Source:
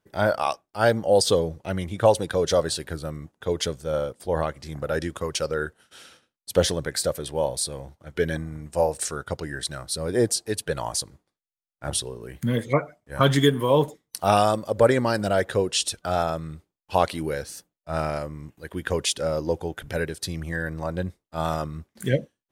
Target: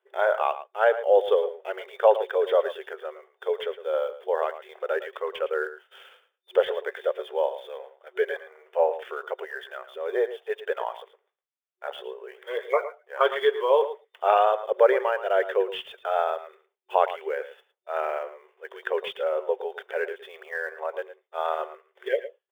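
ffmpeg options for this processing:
-filter_complex "[0:a]afftfilt=real='re*between(b*sr/4096,370,3600)':imag='im*between(b*sr/4096,370,3600)':win_size=4096:overlap=0.75,acrossover=split=2300[s0][s1];[s1]acrusher=bits=2:mode=log:mix=0:aa=0.000001[s2];[s0][s2]amix=inputs=2:normalize=0,acrossover=split=2700[s3][s4];[s4]acompressor=threshold=0.00398:ratio=4:attack=1:release=60[s5];[s3][s5]amix=inputs=2:normalize=0,asplit=2[s6][s7];[s7]adelay=110.8,volume=0.224,highshelf=f=4000:g=-2.49[s8];[s6][s8]amix=inputs=2:normalize=0"

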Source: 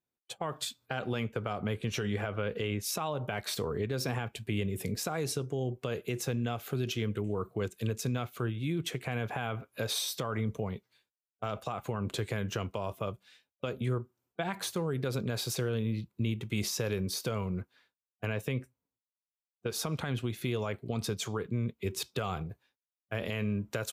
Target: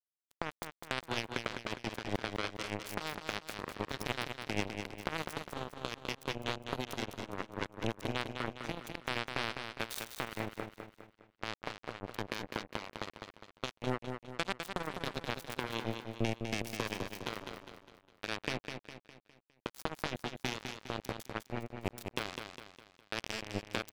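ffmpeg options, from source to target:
-filter_complex "[0:a]bandreject=f=70.62:t=h:w=4,bandreject=f=141.24:t=h:w=4,bandreject=f=211.86:t=h:w=4,bandreject=f=282.48:t=h:w=4,bandreject=f=353.1:t=h:w=4,bandreject=f=423.72:t=h:w=4,bandreject=f=494.34:t=h:w=4,bandreject=f=564.96:t=h:w=4,bandreject=f=635.58:t=h:w=4,acrusher=bits=3:mix=0:aa=0.5,asplit=2[s0][s1];[s1]aecho=0:1:204|408|612|816|1020:0.473|0.213|0.0958|0.0431|0.0194[s2];[s0][s2]amix=inputs=2:normalize=0,volume=1.19"

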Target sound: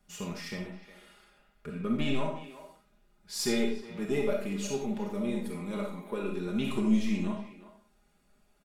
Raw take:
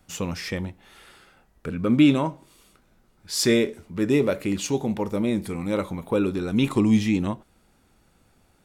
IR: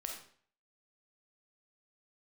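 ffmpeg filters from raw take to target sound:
-filter_complex "[0:a]asettb=1/sr,asplit=3[s0][s1][s2];[s0]atrim=end=5.854[s3];[s1]atrim=start=5.85:end=6.34,asetpts=PTS-STARTPTS,afade=t=in:d=0.004:c=qsin,afade=t=out:st=0.486:d=0.004:c=qsin,highpass=190[s4];[s2]atrim=start=6.336[s5];[s3][s4]acrossfade=d=0.004:c1=hsin:c2=qsin[s6];[s6][s5]acrossfade=d=0.004:c1=qsin:c2=hsin,aeval=exprs='(tanh(2.82*val(0)+0.35)-tanh(0.35))/2.82':c=same,aecho=1:1:4.9:0.77,asplit=2[s7][s8];[s8]adelay=360,highpass=300,lowpass=3400,asoftclip=type=hard:threshold=0.141,volume=0.2[s9];[s7][s9]amix=inputs=2:normalize=0[s10];[1:a]atrim=start_sample=2205,afade=t=out:st=0.24:d=0.01,atrim=end_sample=11025[s11];[s10][s11]afir=irnorm=-1:irlink=0,volume=0.422"

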